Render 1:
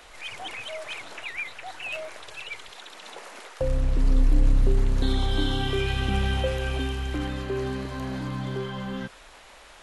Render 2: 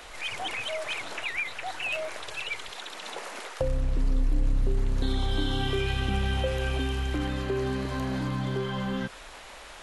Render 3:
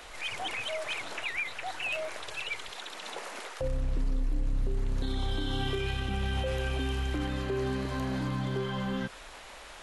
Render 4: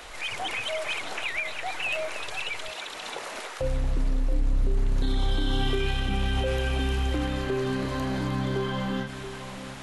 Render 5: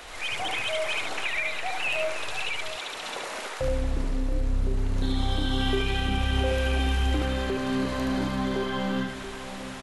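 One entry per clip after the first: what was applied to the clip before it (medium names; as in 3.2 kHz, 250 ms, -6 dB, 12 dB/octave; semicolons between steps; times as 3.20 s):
compression 2:1, threshold -32 dBFS, peak gain reduction 10 dB; trim +4 dB
peak limiter -20 dBFS, peak gain reduction 6 dB; trim -2 dB
two-band feedback delay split 1.2 kHz, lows 677 ms, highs 307 ms, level -11 dB; endings held to a fixed fall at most 100 dB/s; trim +4 dB
delay 73 ms -3 dB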